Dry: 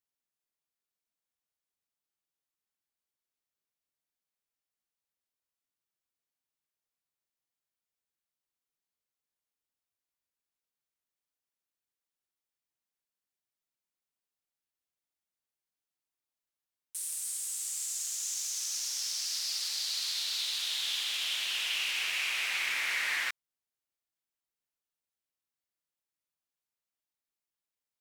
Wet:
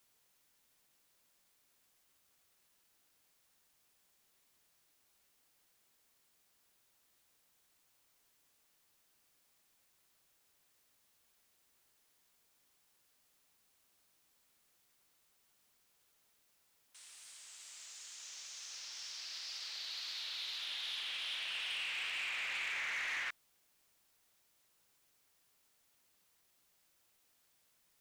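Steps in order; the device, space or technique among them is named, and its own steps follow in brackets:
tape answering machine (band-pass filter 360–3,400 Hz; soft clipping −30.5 dBFS, distortion −15 dB; tape wow and flutter; white noise bed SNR 25 dB)
level −3 dB

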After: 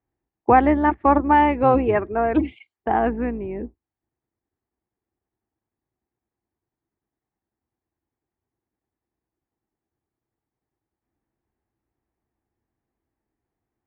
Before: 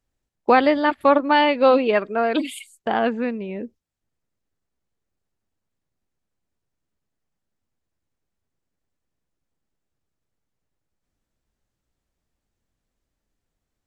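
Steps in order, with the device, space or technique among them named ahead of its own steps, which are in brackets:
sub-octave bass pedal (sub-octave generator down 2 octaves, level −3 dB; loudspeaker in its box 69–2,000 Hz, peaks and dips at 170 Hz −7 dB, 340 Hz +7 dB, 560 Hz −6 dB, 810 Hz +5 dB, 1,400 Hz −5 dB)

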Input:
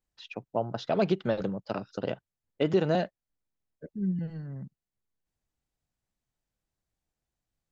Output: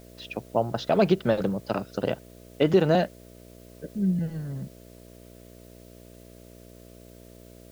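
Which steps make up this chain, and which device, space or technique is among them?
video cassette with head-switching buzz (hum with harmonics 60 Hz, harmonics 11, −54 dBFS −2 dB per octave; white noise bed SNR 30 dB)
level +5 dB

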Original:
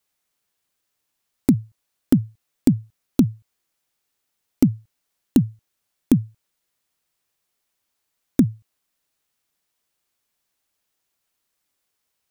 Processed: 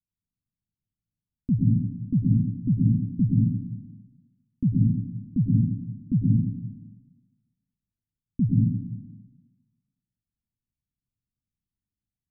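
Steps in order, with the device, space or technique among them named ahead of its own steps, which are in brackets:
club heard from the street (brickwall limiter −8.5 dBFS, peak gain reduction 5 dB; low-pass filter 200 Hz 24 dB per octave; convolution reverb RT60 1.4 s, pre-delay 96 ms, DRR −4.5 dB)

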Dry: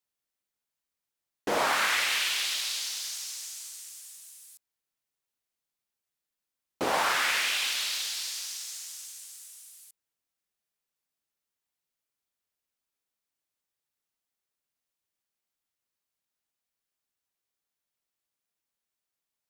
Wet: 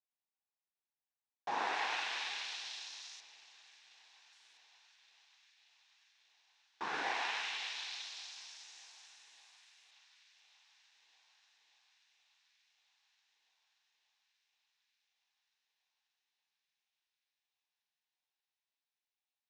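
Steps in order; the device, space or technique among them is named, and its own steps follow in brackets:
0:03.20–0:04.33: spectral tilt −4.5 dB per octave
delay with a high-pass on its return 584 ms, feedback 79%, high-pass 2,500 Hz, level −19.5 dB
voice changer toy (ring modulator whose carrier an LFO sweeps 440 Hz, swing 45%, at 0.44 Hz; loudspeaker in its box 540–5,000 Hz, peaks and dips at 570 Hz −8 dB, 810 Hz +6 dB, 1,300 Hz −9 dB, 2,100 Hz −5 dB, 3,100 Hz −6 dB, 4,600 Hz −7 dB)
level −3.5 dB

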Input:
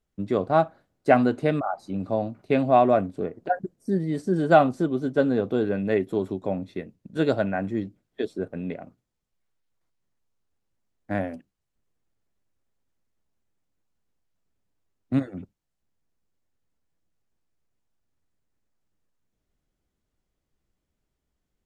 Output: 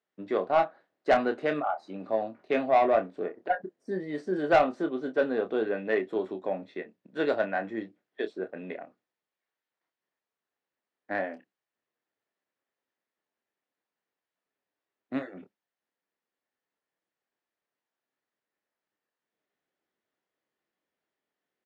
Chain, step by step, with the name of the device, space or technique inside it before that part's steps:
intercom (band-pass filter 390–3,800 Hz; parametric band 1,800 Hz +5.5 dB 0.26 octaves; soft clipping −13.5 dBFS, distortion −13 dB; double-tracking delay 27 ms −8 dB)
level −1 dB

